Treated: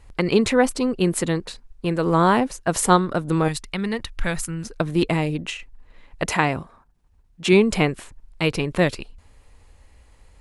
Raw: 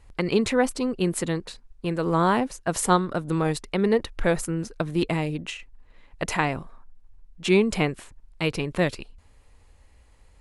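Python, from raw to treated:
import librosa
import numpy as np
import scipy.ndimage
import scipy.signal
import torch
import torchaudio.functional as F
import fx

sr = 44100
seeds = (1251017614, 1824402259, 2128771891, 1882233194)

y = fx.peak_eq(x, sr, hz=440.0, db=-13.0, octaves=1.9, at=(3.48, 4.65))
y = fx.highpass(y, sr, hz=51.0, slope=12, at=(6.28, 7.53))
y = y * librosa.db_to_amplitude(4.0)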